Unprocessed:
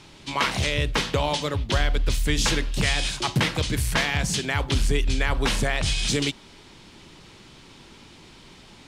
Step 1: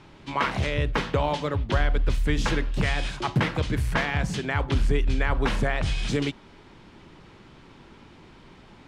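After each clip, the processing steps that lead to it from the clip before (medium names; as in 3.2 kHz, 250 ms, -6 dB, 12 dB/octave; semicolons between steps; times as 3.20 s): FFT filter 1.5 kHz 0 dB, 4 kHz -10 dB, 10 kHz -15 dB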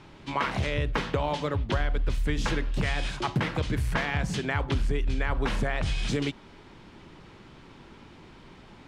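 compression 2.5:1, threshold -24 dBFS, peak gain reduction 5 dB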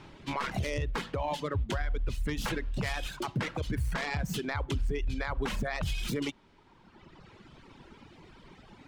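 tracing distortion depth 0.11 ms; reverb removal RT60 1.8 s; peak limiter -23 dBFS, peak gain reduction 9 dB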